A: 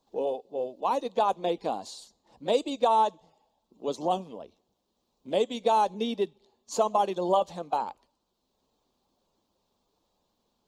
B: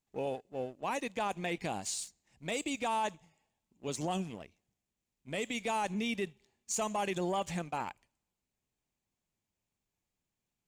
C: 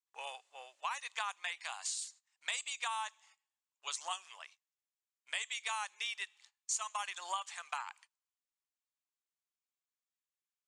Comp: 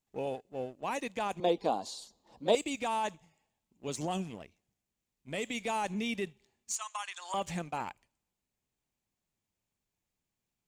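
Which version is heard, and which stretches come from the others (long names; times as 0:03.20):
B
0:01.40–0:02.55: punch in from A
0:06.76–0:07.34: punch in from C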